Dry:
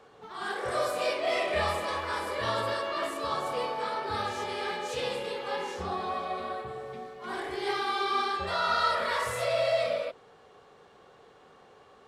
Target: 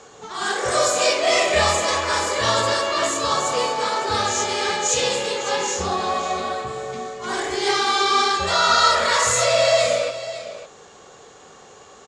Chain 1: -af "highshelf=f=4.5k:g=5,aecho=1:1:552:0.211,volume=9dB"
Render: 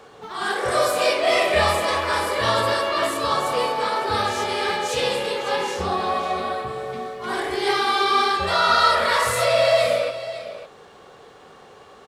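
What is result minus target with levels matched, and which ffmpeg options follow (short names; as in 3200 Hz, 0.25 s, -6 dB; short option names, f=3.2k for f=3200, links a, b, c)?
8000 Hz band -9.0 dB
-af "lowpass=f=6.9k:t=q:w=7.3,highshelf=f=4.5k:g=5,aecho=1:1:552:0.211,volume=9dB"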